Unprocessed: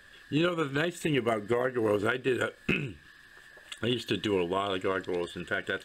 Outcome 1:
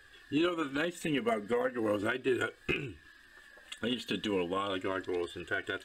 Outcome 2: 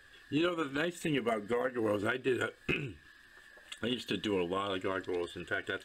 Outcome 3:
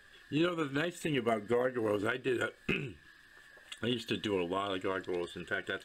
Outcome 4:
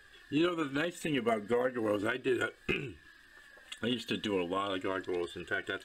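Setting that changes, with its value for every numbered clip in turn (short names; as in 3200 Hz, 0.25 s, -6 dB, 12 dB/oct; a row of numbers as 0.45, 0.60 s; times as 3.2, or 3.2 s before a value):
flange, regen: -12, -49, +73, +27%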